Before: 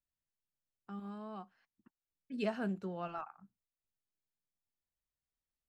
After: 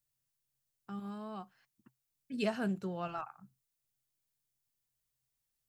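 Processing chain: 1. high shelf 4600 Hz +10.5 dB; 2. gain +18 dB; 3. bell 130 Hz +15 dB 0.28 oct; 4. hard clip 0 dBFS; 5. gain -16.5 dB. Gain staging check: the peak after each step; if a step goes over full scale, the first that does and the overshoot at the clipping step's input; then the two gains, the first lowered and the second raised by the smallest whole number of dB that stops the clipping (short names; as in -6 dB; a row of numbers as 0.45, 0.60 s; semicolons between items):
-23.0, -5.0, -5.0, -5.0, -21.5 dBFS; no overload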